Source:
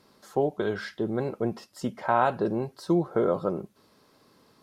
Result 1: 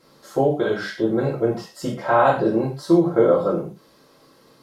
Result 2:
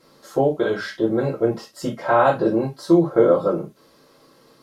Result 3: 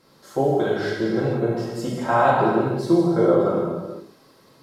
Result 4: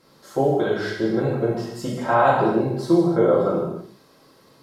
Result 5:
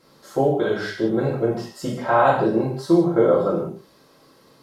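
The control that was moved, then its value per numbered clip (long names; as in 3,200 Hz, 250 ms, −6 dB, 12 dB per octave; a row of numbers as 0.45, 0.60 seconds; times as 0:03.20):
reverb whose tail is shaped and stops, gate: 150, 90, 530, 350, 220 milliseconds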